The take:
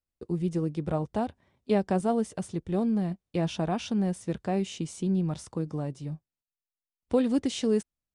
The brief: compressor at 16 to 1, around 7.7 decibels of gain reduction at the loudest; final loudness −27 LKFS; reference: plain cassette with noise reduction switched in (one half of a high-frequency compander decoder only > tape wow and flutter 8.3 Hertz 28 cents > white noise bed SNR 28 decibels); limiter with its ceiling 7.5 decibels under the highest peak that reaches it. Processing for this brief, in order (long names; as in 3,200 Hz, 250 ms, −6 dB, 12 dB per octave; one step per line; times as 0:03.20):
downward compressor 16 to 1, threshold −26 dBFS
brickwall limiter −24.5 dBFS
one half of a high-frequency compander decoder only
tape wow and flutter 8.3 Hz 28 cents
white noise bed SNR 28 dB
level +7.5 dB